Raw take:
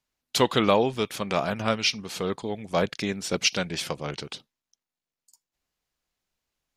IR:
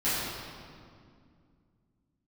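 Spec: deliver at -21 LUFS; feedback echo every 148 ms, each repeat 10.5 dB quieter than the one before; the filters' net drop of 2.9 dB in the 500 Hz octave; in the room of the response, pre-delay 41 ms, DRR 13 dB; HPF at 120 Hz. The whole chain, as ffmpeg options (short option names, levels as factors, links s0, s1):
-filter_complex "[0:a]highpass=120,equalizer=f=500:t=o:g=-3.5,aecho=1:1:148|296|444:0.299|0.0896|0.0269,asplit=2[s0][s1];[1:a]atrim=start_sample=2205,adelay=41[s2];[s1][s2]afir=irnorm=-1:irlink=0,volume=0.0596[s3];[s0][s3]amix=inputs=2:normalize=0,volume=2"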